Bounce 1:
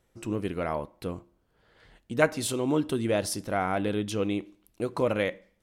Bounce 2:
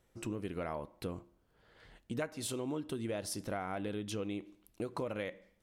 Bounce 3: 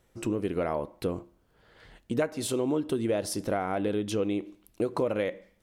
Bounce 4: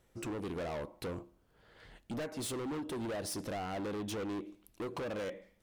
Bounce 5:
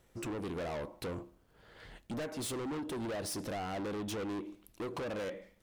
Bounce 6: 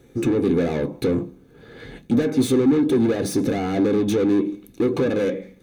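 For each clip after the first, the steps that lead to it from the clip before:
compression 6:1, threshold -33 dBFS, peak gain reduction 16 dB; trim -2 dB
dynamic bell 430 Hz, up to +6 dB, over -50 dBFS, Q 0.74; trim +5.5 dB
hard clipper -33 dBFS, distortion -6 dB; trim -3 dB
waveshaping leveller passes 1
reverberation RT60 0.15 s, pre-delay 3 ms, DRR 7.5 dB; trim +7 dB

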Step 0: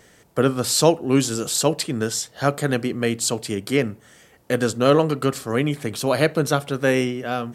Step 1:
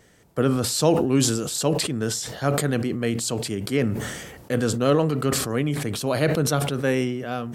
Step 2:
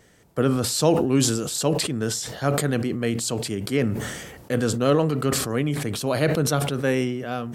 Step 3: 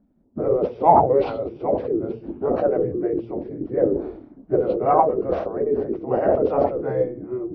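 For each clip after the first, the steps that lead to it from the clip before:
bass shelf 300 Hz +5 dB; decay stretcher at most 42 dB/s; trim -5.5 dB
no audible change
knee-point frequency compression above 1.2 kHz 1.5:1; spectral gate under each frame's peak -10 dB weak; touch-sensitive low-pass 220–4100 Hz up, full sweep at -17.5 dBFS; trim +8.5 dB

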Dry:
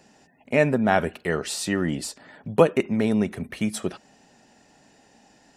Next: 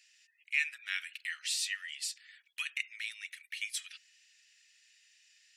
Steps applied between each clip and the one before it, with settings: steep high-pass 2.1 kHz 36 dB/octave; treble shelf 4.7 kHz -8.5 dB; trim +2 dB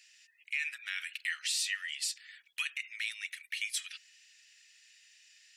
peak limiter -26.5 dBFS, peak gain reduction 11 dB; trim +4 dB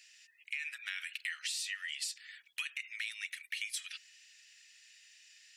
compression, threshold -36 dBFS, peak gain reduction 7.5 dB; trim +1 dB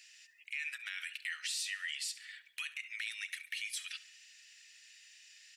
peak limiter -29.5 dBFS, peak gain reduction 6.5 dB; feedback delay 69 ms, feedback 48%, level -17.5 dB; trim +1.5 dB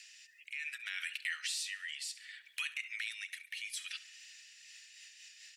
rotary cabinet horn 0.65 Hz, later 5 Hz, at 4.22 s; tape noise reduction on one side only encoder only; trim +3 dB

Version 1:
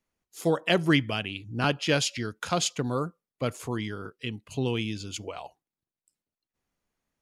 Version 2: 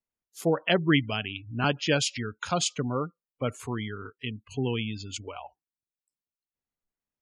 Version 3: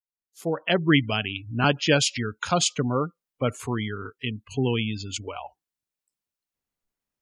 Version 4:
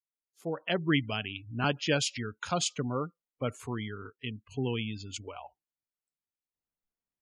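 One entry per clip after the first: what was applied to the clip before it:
spectral gate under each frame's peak -25 dB strong; spectral noise reduction 13 dB
fade-in on the opening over 1.09 s; trim +4.5 dB
tape noise reduction on one side only decoder only; trim -7.5 dB

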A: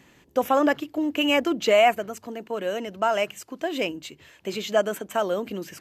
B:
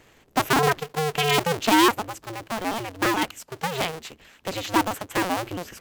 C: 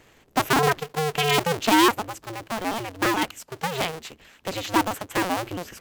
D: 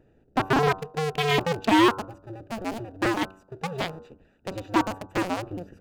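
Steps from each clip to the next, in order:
cycle switcher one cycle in 2, inverted
no audible change
local Wiener filter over 41 samples; de-hum 95.41 Hz, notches 16; slew-rate limiter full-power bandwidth 370 Hz

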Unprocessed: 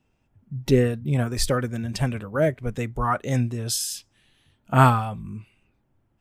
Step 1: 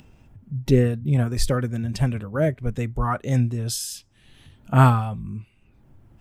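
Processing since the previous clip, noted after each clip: bass shelf 240 Hz +7.5 dB; upward compressor, threshold -35 dBFS; trim -2.5 dB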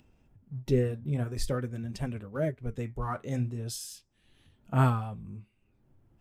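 peaking EQ 410 Hz +3.5 dB 1 oct; in parallel at -10 dB: crossover distortion -39.5 dBFS; on the sum: flange 0.46 Hz, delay 2.8 ms, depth 9.5 ms, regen -67%; trim -8 dB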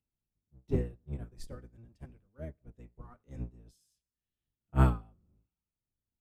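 octave divider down 1 oct, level +4 dB; two-slope reverb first 0.61 s, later 2.4 s, from -18 dB, DRR 16.5 dB; upward expansion 2.5:1, over -35 dBFS; trim -3 dB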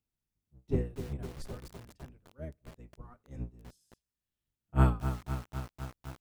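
bit-crushed delay 253 ms, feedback 80%, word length 7-bit, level -9 dB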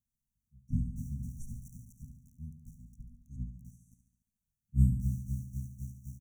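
brick-wall FIR band-stop 260–5600 Hz; feedback delay 71 ms, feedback 60%, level -9 dB

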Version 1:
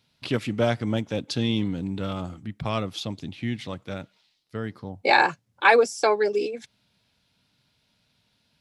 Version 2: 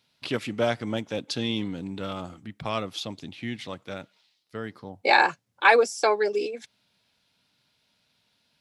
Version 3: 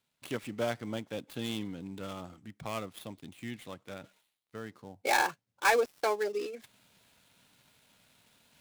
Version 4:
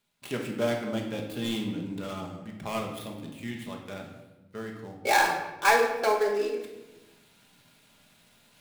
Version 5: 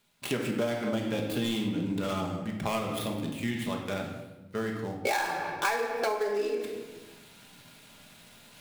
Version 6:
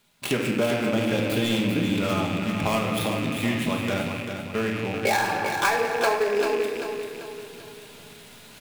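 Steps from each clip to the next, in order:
bass shelf 190 Hz -10.5 dB
dead-time distortion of 0.095 ms; reverse; upward compressor, threshold -41 dBFS; reverse; trim -7.5 dB
simulated room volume 520 m³, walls mixed, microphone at 1.3 m; trim +2 dB
compression 8:1, threshold -33 dBFS, peak gain reduction 17 dB; trim +7 dB
rattle on loud lows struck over -44 dBFS, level -29 dBFS; feedback delay 391 ms, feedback 45%, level -7 dB; trim +5.5 dB

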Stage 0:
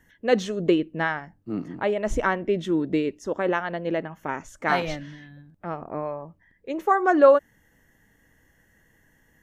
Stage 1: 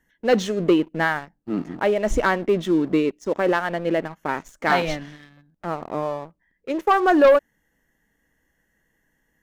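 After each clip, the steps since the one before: peaking EQ 99 Hz -14.5 dB 0.42 oct; waveshaping leveller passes 2; trim -3 dB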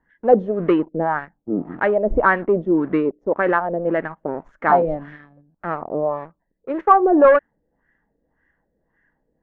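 LFO low-pass sine 1.8 Hz 490–1800 Hz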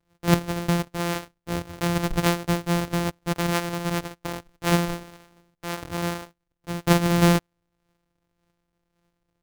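sorted samples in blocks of 256 samples; trim -6 dB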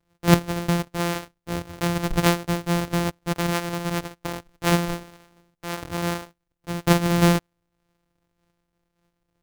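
random flutter of the level, depth 50%; trim +3.5 dB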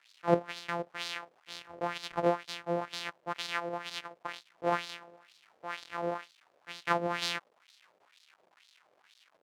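crackle 390 per s -38 dBFS; LFO band-pass sine 2.1 Hz 510–4200 Hz

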